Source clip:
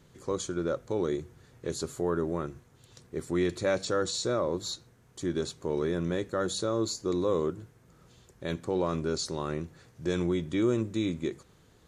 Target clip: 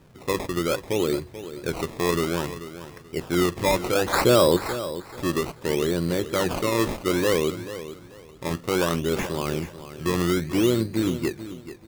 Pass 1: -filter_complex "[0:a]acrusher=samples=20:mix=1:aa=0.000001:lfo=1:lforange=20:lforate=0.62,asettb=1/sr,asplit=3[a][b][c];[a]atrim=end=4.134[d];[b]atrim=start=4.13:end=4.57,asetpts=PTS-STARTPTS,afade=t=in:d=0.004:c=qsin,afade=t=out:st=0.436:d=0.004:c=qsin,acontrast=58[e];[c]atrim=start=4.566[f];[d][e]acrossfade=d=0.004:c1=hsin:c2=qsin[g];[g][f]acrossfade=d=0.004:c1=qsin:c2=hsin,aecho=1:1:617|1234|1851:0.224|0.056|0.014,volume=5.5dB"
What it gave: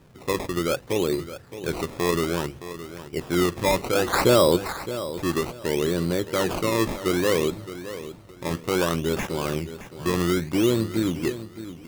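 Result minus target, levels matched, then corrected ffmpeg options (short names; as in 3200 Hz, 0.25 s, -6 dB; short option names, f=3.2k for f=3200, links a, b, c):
echo 0.181 s late
-filter_complex "[0:a]acrusher=samples=20:mix=1:aa=0.000001:lfo=1:lforange=20:lforate=0.62,asettb=1/sr,asplit=3[a][b][c];[a]atrim=end=4.134[d];[b]atrim=start=4.13:end=4.57,asetpts=PTS-STARTPTS,afade=t=in:d=0.004:c=qsin,afade=t=out:st=0.436:d=0.004:c=qsin,acontrast=58[e];[c]atrim=start=4.566[f];[d][e]acrossfade=d=0.004:c1=hsin:c2=qsin[g];[g][f]acrossfade=d=0.004:c1=qsin:c2=hsin,aecho=1:1:436|872|1308:0.224|0.056|0.014,volume=5.5dB"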